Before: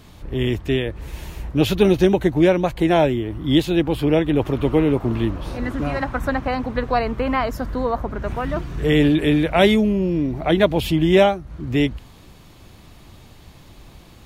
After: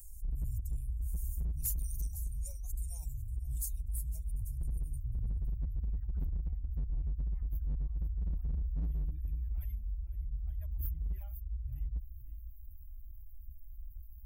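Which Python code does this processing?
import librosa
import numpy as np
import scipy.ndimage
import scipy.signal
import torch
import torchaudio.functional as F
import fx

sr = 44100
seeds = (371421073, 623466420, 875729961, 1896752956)

y = fx.bin_expand(x, sr, power=1.5)
y = fx.cheby2_bandstop(y, sr, low_hz=180.0, high_hz=fx.steps((0.0, 3500.0), (4.97, 8800.0)), order=4, stop_db=50)
y = y + 10.0 ** (-18.5 / 20.0) * np.pad(y, (int(506 * sr / 1000.0), 0))[:len(y)]
y = fx.env_flanger(y, sr, rest_ms=5.5, full_db=-30.0)
y = np.clip(y, -10.0 ** (-32.0 / 20.0), 10.0 ** (-32.0 / 20.0))
y = fx.high_shelf(y, sr, hz=6400.0, db=9.0)
y = fx.env_flatten(y, sr, amount_pct=50)
y = y * 10.0 ** (1.0 / 20.0)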